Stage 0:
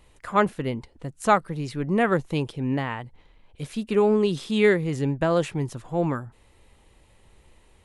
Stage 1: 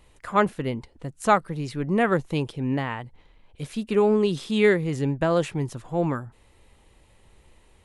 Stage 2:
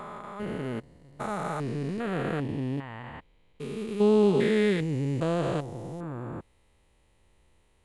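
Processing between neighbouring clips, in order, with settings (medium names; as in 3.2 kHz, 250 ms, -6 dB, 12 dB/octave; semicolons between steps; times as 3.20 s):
no audible change
spectrogram pixelated in time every 400 ms; upward expansion 1.5:1, over -41 dBFS; trim +2.5 dB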